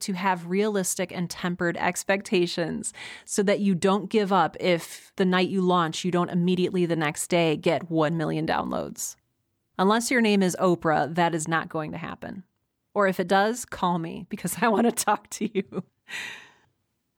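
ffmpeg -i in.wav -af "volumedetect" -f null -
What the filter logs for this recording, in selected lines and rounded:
mean_volume: -25.5 dB
max_volume: -10.1 dB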